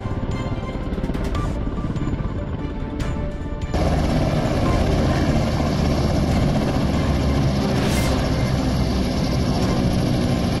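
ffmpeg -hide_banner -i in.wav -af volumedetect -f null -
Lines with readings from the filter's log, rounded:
mean_volume: -20.2 dB
max_volume: -10.7 dB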